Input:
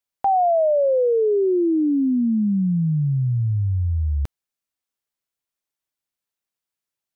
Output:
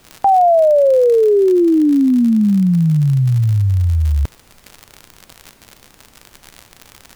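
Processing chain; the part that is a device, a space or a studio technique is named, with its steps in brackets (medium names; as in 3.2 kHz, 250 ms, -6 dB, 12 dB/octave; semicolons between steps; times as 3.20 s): vinyl LP (crackle 77 per s -28 dBFS; pink noise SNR 35 dB); trim +7 dB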